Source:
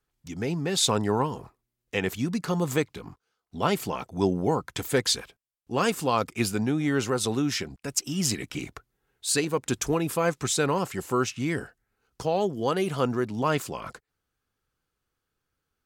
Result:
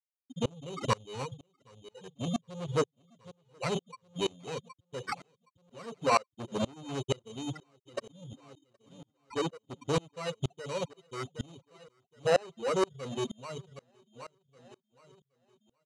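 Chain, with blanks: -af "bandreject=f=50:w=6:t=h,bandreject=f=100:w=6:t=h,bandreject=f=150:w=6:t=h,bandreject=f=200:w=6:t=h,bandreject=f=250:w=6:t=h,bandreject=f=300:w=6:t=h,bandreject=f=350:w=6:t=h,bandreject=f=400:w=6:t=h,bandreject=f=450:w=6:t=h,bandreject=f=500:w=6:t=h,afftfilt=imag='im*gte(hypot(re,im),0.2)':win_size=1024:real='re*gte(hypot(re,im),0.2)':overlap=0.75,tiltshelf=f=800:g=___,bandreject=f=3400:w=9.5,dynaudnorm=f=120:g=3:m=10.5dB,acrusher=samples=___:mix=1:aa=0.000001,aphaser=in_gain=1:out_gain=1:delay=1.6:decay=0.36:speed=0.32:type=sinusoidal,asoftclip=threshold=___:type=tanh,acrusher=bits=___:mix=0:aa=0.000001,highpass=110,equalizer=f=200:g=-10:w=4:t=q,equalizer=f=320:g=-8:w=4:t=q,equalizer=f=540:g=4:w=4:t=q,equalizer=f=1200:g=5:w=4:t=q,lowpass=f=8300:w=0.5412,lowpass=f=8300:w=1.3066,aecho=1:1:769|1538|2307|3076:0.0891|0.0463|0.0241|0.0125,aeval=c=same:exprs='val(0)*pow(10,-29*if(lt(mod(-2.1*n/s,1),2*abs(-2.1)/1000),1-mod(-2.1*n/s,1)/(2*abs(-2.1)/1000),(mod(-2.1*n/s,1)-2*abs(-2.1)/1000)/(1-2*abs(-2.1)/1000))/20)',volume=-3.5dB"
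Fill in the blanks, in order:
4.5, 13, -15.5dB, 10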